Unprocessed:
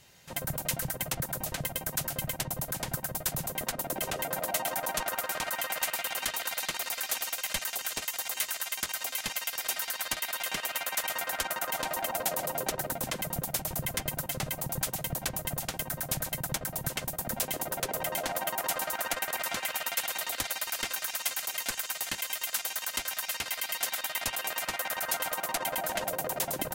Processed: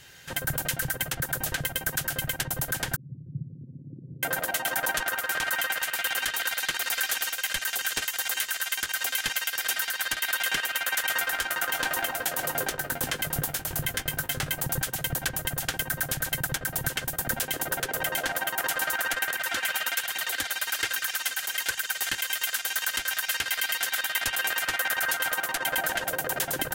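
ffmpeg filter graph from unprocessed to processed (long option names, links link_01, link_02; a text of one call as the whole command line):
ffmpeg -i in.wav -filter_complex "[0:a]asettb=1/sr,asplit=3[link_01][link_02][link_03];[link_01]atrim=end=2.964[link_04];[link_02]atrim=start=2.96:end=4.23,asetpts=PTS-STARTPTS,afade=type=in:duration=0.004:curve=qsin,afade=type=out:start_time=1.266:duration=0.004:curve=qsin,asuperpass=centerf=170:order=8:qfactor=1,aecho=1:1:2:0.54,atrim=end_sample=56007[link_05];[link_03]atrim=start=4.226[link_06];[link_04][link_05]acrossfade=duration=0.004:curve1=hsin:curve2=qsin[link_07];[link_07][link_06]acrossfade=duration=0.004:curve1=qsin:curve2=hsin,asettb=1/sr,asplit=3[link_08][link_09][link_10];[link_08]atrim=end=11.214[link_11];[link_09]atrim=start=11.21:end=14.57,asetpts=PTS-STARTPTS,afade=type=in:duration=0.004:curve=qsin,afade=type=out:start_time=3.356:duration=0.004:curve=qsin,aeval=exprs='sgn(val(0))*max(abs(val(0))-0.00335,0)':channel_layout=same,asplit=2[link_12][link_13];[link_13]adelay=20,volume=-10dB[link_14];[link_12][link_14]amix=inputs=2:normalize=0,atrim=end_sample=148176[link_15];[link_10]atrim=start=14.566[link_16];[link_11][link_15]acrossfade=duration=0.004:curve1=hsin:curve2=qsin[link_17];[link_17][link_16]acrossfade=duration=0.004:curve1=qsin:curve2=hsin,asettb=1/sr,asplit=3[link_18][link_19][link_20];[link_18]atrim=end=19.334[link_21];[link_19]atrim=start=19.33:end=22.02,asetpts=PTS-STARTPTS,afade=type=in:duration=0.004:curve=qsin,afade=type=out:start_time=2.686:duration=0.004:curve=qsin,highpass=68,flanger=delay=0.3:depth=5.4:regen=-23:speed=1.2:shape=triangular[link_22];[link_20]atrim=start=22.016[link_23];[link_21][link_22]acrossfade=duration=0.004:curve1=hsin:curve2=qsin[link_24];[link_24][link_23]acrossfade=duration=0.004:curve1=qsin:curve2=hsin,equalizer=frequency=200:width_type=o:width=0.33:gain=-8,equalizer=frequency=630:width_type=o:width=0.33:gain=-6,equalizer=frequency=1000:width_type=o:width=0.33:gain=-4,equalizer=frequency=1600:width_type=o:width=0.33:gain=10,equalizer=frequency=3150:width_type=o:width=0.33:gain=4,alimiter=limit=-20.5dB:level=0:latency=1:release=305,volume=6.5dB" out.wav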